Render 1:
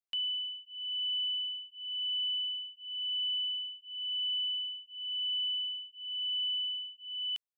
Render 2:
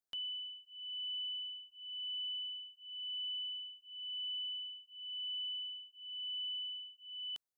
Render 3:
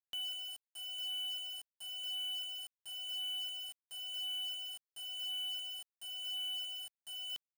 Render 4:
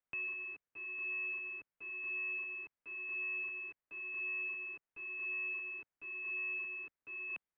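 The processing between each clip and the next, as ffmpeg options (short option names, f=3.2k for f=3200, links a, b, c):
-af "equalizer=f=2.5k:t=o:w=0.77:g=-13.5,volume=1.5dB"
-af "acrusher=bits=7:mix=0:aa=0.000001"
-af "highpass=190,highpass=f=240:t=q:w=0.5412,highpass=f=240:t=q:w=1.307,lowpass=f=2.8k:t=q:w=0.5176,lowpass=f=2.8k:t=q:w=0.7071,lowpass=f=2.8k:t=q:w=1.932,afreqshift=-390,volume=5.5dB"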